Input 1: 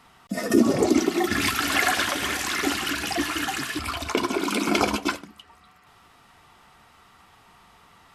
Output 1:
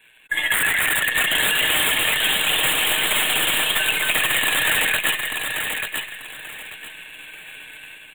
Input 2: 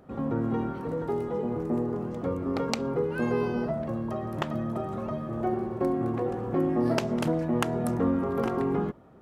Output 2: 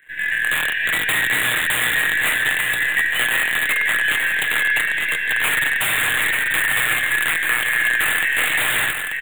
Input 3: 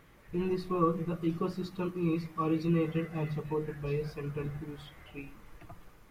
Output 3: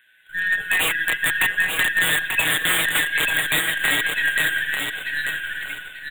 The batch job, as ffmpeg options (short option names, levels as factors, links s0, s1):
-filter_complex "[0:a]afftfilt=real='real(if(lt(b,272),68*(eq(floor(b/68),0)*3+eq(floor(b/68),1)*0+eq(floor(b/68),2)*1+eq(floor(b/68),3)*2)+mod(b,68),b),0)':imag='imag(if(lt(b,272),68*(eq(floor(b/68),0)*3+eq(floor(b/68),1)*0+eq(floor(b/68),2)*1+eq(floor(b/68),3)*2)+mod(b,68),b),0)':win_size=2048:overlap=0.75,asplit=2[s0][s1];[s1]acrusher=bits=5:dc=4:mix=0:aa=0.000001,volume=0.473[s2];[s0][s2]amix=inputs=2:normalize=0,tremolo=f=120:d=0.261,dynaudnorm=f=440:g=3:m=3.98,aeval=exprs='(mod(4.22*val(0)+1,2)-1)/4.22':c=same,adynamicequalizer=threshold=0.0126:dfrequency=2800:dqfactor=1.4:tfrequency=2800:tqfactor=1.4:attack=5:release=100:ratio=0.375:range=3:mode=boostabove:tftype=bell,asuperstop=centerf=5300:order=8:qfactor=1.4,aecho=1:1:6.5:0.34,acrossover=split=260|1300[s3][s4][s5];[s3]acompressor=threshold=0.00891:ratio=4[s6];[s4]acompressor=threshold=0.0316:ratio=4[s7];[s5]acompressor=threshold=0.0891:ratio=4[s8];[s6][s7][s8]amix=inputs=3:normalize=0,aecho=1:1:888|1776|2664:0.531|0.133|0.0332,volume=1.26"